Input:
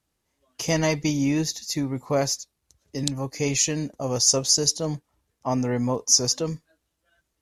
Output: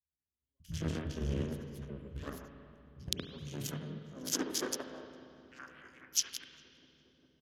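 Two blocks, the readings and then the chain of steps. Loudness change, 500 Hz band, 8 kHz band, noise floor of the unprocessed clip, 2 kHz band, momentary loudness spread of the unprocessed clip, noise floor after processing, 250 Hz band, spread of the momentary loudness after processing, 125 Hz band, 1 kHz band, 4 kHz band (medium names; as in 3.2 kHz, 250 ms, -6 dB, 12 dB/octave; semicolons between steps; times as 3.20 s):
-15.0 dB, -17.5 dB, -16.5 dB, -78 dBFS, -13.5 dB, 12 LU, under -85 dBFS, -15.5 dB, 20 LU, -12.5 dB, -17.5 dB, -15.0 dB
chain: octave divider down 2 oct, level -3 dB; Chebyshev shaper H 3 -10 dB, 4 -20 dB, 5 -35 dB, 7 -31 dB, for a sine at -4 dBFS; high-pass sweep 69 Hz -> 2.6 kHz, 3.08–6.11 s; bass shelf 330 Hz +7.5 dB; three bands offset in time lows, highs, mids 50/120 ms, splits 160/2200 Hz; in parallel at -11 dB: small samples zeroed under -28 dBFS; on the sum: low-pass that closes with the level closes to 590 Hz, closed at -7 dBFS; graphic EQ with 31 bands 160 Hz +8 dB, 250 Hz +8 dB, 400 Hz +4 dB, 800 Hz -7 dB, 1.6 kHz +6 dB, 3.15 kHz +9 dB; on a send: filtered feedback delay 405 ms, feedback 83%, low-pass 1.3 kHz, level -23 dB; on the sum: spring tank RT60 2.4 s, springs 35/46 ms, chirp 75 ms, DRR 6 dB; trim -7.5 dB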